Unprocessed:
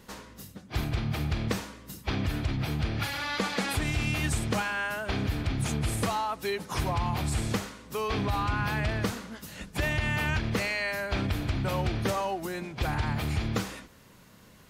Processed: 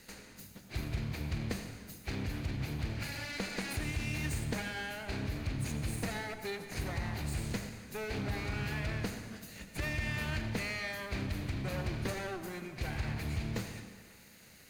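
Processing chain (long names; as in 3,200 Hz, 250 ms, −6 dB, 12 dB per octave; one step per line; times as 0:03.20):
lower of the sound and its delayed copy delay 0.45 ms
convolution reverb RT60 1.4 s, pre-delay 68 ms, DRR 8.5 dB
one half of a high-frequency compander encoder only
level −7 dB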